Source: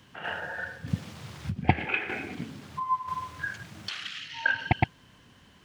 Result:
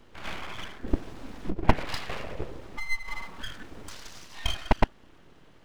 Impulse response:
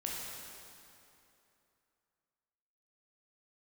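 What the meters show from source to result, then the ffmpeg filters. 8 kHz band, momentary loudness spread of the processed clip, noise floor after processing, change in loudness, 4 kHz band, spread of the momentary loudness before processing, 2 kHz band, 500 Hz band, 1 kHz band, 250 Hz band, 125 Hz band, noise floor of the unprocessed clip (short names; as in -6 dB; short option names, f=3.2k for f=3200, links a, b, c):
+5.0 dB, 16 LU, -54 dBFS, -2.0 dB, +1.0 dB, 11 LU, -6.5 dB, +3.5 dB, -3.0 dB, +0.5 dB, -3.0 dB, -58 dBFS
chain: -af "tiltshelf=f=1.5k:g=6.5,aeval=exprs='abs(val(0))':c=same,volume=-1dB"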